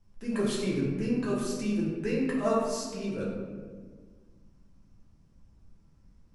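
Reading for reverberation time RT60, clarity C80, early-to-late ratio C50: 1.6 s, 3.0 dB, 0.5 dB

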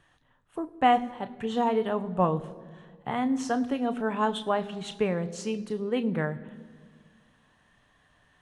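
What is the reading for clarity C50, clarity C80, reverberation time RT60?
17.5 dB, 18.5 dB, 1.8 s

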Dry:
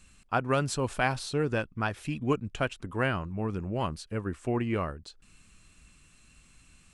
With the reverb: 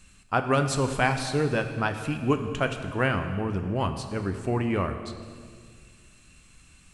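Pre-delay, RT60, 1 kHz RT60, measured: 7 ms, 1.9 s, 1.8 s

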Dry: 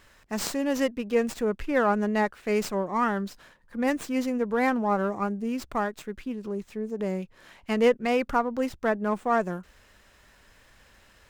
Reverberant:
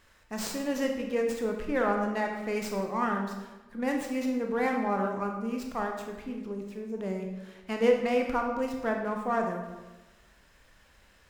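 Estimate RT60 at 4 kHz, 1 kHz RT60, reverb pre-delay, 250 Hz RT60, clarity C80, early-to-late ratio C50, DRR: 0.85 s, 1.1 s, 20 ms, 1.3 s, 7.0 dB, 4.5 dB, 2.0 dB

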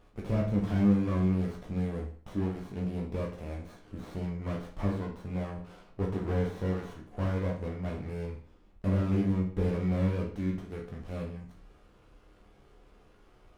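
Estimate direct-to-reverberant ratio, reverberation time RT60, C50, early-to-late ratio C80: -2.0 dB, 0.50 s, 6.5 dB, 11.0 dB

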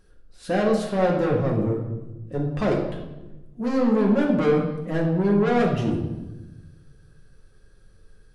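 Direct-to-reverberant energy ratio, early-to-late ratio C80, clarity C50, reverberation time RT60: -2.0 dB, 7.0 dB, 4.5 dB, 1.1 s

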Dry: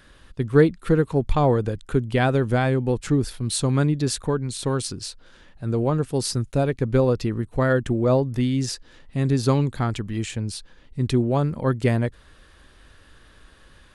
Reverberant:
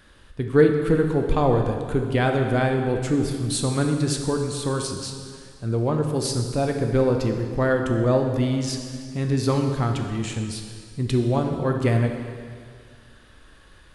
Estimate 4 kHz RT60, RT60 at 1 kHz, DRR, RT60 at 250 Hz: 1.9 s, 2.0 s, 3.0 dB, 1.9 s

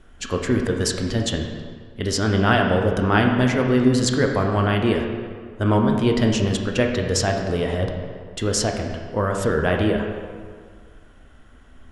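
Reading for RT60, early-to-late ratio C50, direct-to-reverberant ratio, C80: 1.9 s, 4.0 dB, 2.0 dB, 5.5 dB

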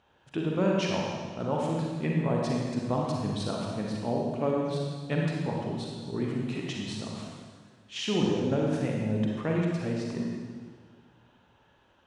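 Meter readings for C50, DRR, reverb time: -1.0 dB, -2.5 dB, 1.7 s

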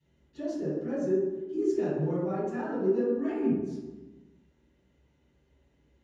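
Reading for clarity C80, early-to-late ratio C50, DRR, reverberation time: 0.5 dB, -4.0 dB, -18.0 dB, 1.2 s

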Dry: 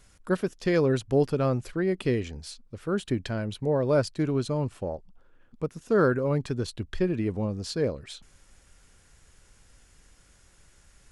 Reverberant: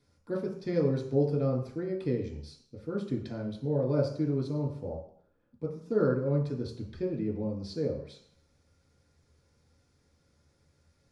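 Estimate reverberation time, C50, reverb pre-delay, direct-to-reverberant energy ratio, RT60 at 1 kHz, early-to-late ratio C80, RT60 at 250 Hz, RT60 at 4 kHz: 0.60 s, 6.0 dB, 3 ms, -3.5 dB, 0.65 s, 10.0 dB, 0.55 s, 0.60 s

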